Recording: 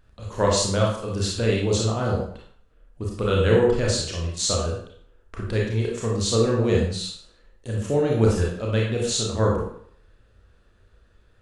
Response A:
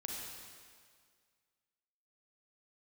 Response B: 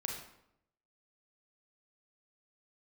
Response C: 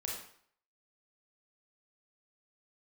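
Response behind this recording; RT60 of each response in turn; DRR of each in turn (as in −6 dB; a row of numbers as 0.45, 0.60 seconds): C; 1.9, 0.80, 0.60 seconds; −1.5, 0.5, −2.5 decibels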